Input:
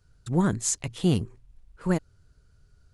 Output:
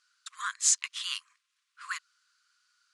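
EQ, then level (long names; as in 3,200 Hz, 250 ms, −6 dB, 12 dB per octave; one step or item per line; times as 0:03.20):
linear-phase brick-wall high-pass 1,000 Hz
high-frequency loss of the air 72 metres
high-shelf EQ 2,300 Hz +10.5 dB
0.0 dB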